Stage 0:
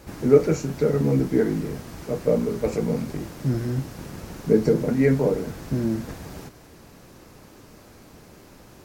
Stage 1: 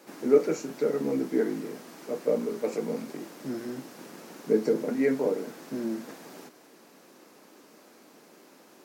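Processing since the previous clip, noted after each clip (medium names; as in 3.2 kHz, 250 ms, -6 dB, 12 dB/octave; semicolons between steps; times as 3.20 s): high-pass 230 Hz 24 dB/octave; trim -4.5 dB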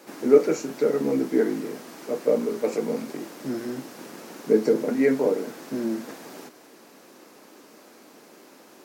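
peaking EQ 170 Hz -3.5 dB 0.36 oct; trim +4.5 dB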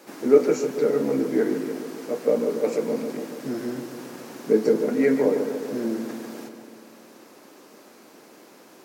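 filtered feedback delay 144 ms, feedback 69%, low-pass 2.3 kHz, level -8.5 dB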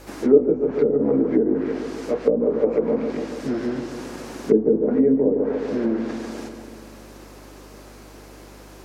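low-pass that closes with the level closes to 420 Hz, closed at -17 dBFS; hum 50 Hz, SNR 25 dB; trim +4.5 dB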